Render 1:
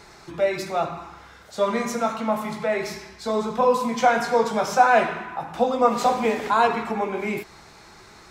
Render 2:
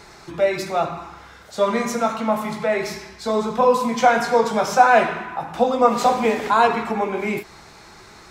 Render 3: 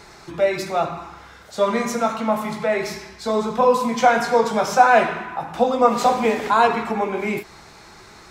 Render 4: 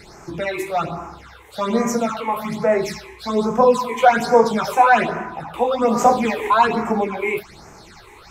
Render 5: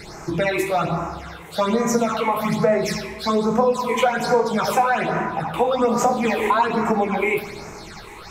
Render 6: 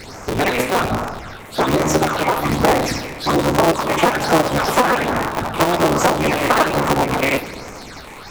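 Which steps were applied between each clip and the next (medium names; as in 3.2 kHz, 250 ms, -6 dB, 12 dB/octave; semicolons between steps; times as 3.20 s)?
endings held to a fixed fall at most 290 dB/s; trim +3 dB
no audible change
phase shifter stages 8, 1.2 Hz, lowest notch 180–3900 Hz; trim +3.5 dB
compression 6:1, threshold -21 dBFS, peak gain reduction 13 dB; simulated room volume 2300 m³, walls mixed, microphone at 0.58 m; trim +5 dB
cycle switcher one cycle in 3, inverted; trim +3 dB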